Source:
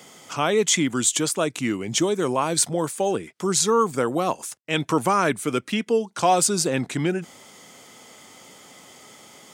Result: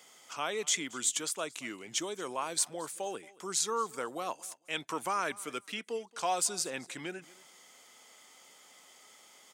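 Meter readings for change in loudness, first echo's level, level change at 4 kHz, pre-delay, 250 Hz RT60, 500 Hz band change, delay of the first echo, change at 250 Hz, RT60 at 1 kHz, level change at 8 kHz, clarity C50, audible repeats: -11.5 dB, -22.0 dB, -9.0 dB, none, none, -15.5 dB, 0.226 s, -19.0 dB, none, -9.0 dB, none, 1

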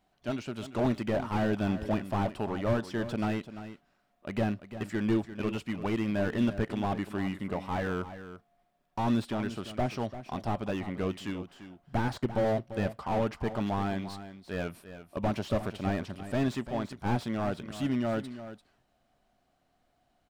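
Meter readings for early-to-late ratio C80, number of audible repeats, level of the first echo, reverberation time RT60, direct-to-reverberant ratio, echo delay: none, 1, -12.5 dB, none, none, 0.343 s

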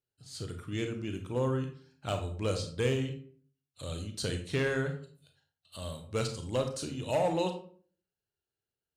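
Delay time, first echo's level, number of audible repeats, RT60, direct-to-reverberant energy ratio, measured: none, none, none, 0.45 s, 5.0 dB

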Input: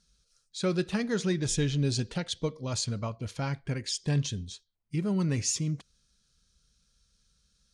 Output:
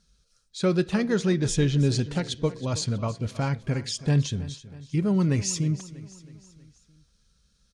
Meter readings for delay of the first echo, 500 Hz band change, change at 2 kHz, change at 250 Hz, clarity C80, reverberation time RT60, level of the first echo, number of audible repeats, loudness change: 0.321 s, +5.5 dB, +3.5 dB, +5.5 dB, none, none, -17.0 dB, 4, +4.5 dB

